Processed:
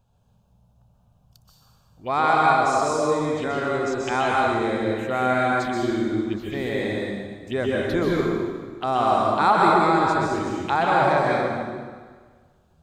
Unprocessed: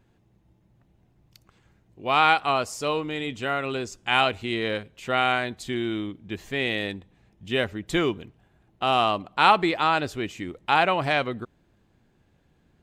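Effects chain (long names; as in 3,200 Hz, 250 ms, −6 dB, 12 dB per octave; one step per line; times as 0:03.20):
phaser swept by the level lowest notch 320 Hz, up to 2,900 Hz, full sweep at −27.5 dBFS
dense smooth reverb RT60 1.6 s, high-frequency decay 0.9×, pre-delay 115 ms, DRR −4 dB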